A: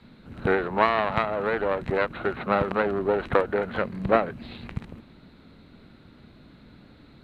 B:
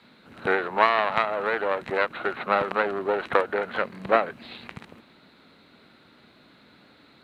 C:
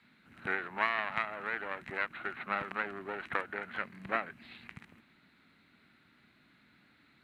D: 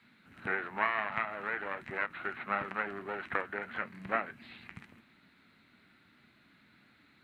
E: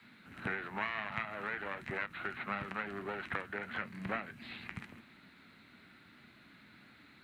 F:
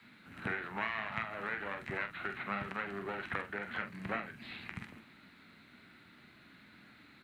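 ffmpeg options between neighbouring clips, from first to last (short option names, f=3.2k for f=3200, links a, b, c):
-af "highpass=f=690:p=1,volume=3.5dB"
-af "equalizer=f=500:t=o:w=1:g=-11,equalizer=f=1k:t=o:w=1:g=-4,equalizer=f=2k:t=o:w=1:g=5,equalizer=f=4k:t=o:w=1:g=-6,volume=-8dB"
-filter_complex "[0:a]acrossover=split=2700[a][b];[b]acompressor=threshold=-54dB:ratio=4:attack=1:release=60[c];[a][c]amix=inputs=2:normalize=0,flanger=delay=8.2:depth=2.7:regen=-65:speed=1.6:shape=sinusoidal,volume=5.5dB"
-filter_complex "[0:a]acrossover=split=200|3000[a][b][c];[b]acompressor=threshold=-43dB:ratio=4[d];[a][d][c]amix=inputs=3:normalize=0,volume=4.5dB"
-filter_complex "[0:a]asplit=2[a][b];[b]adelay=45,volume=-9dB[c];[a][c]amix=inputs=2:normalize=0"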